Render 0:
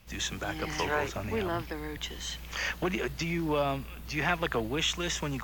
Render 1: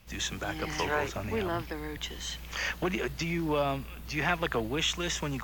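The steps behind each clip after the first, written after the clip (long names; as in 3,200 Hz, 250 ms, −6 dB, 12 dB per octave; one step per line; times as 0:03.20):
no processing that can be heard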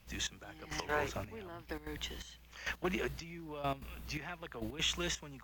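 gate pattern "xxx.....x.x" 169 BPM −12 dB
level −4.5 dB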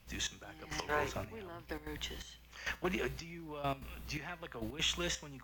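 tuned comb filter 130 Hz, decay 0.42 s, harmonics all, mix 50%
level +5 dB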